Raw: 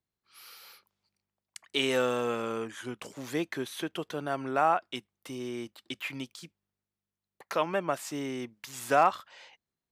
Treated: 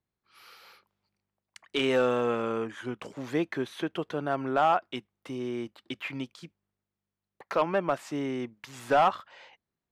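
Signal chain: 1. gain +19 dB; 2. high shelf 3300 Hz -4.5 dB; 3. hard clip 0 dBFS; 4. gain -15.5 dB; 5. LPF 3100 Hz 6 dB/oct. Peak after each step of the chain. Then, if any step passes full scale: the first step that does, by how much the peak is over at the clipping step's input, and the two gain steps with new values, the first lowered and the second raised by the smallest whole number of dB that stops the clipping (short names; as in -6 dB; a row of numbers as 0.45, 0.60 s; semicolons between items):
+7.0, +7.0, 0.0, -15.5, -15.5 dBFS; step 1, 7.0 dB; step 1 +12 dB, step 4 -8.5 dB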